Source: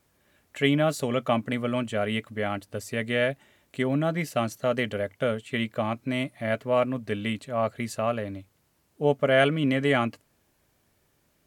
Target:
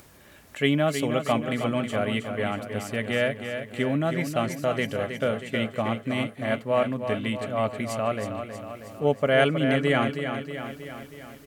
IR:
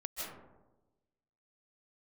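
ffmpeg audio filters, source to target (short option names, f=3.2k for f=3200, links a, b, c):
-af "acompressor=mode=upward:threshold=-40dB:ratio=2.5,aecho=1:1:318|636|954|1272|1590|1908|2226:0.398|0.235|0.139|0.0818|0.0482|0.0285|0.0168"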